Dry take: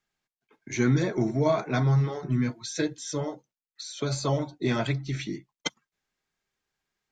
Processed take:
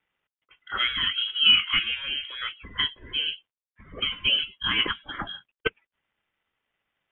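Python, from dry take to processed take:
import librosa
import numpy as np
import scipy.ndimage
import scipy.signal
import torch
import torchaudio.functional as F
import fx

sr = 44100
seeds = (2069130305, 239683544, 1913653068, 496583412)

y = scipy.signal.sosfilt(scipy.signal.butter(4, 440.0, 'highpass', fs=sr, output='sos'), x)
y = fx.quant_companded(y, sr, bits=8)
y = fx.freq_invert(y, sr, carrier_hz=3600)
y = y * 10.0 ** (7.0 / 20.0)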